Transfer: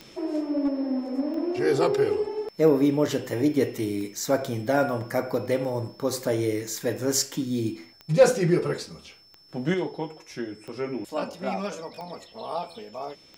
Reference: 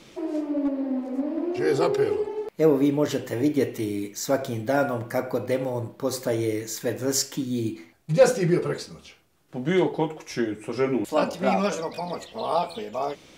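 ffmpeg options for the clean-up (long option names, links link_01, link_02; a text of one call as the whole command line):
ffmpeg -i in.wav -af "adeclick=threshold=4,bandreject=frequency=5300:width=30,asetnsamples=nb_out_samples=441:pad=0,asendcmd='9.74 volume volume 7dB',volume=0dB" out.wav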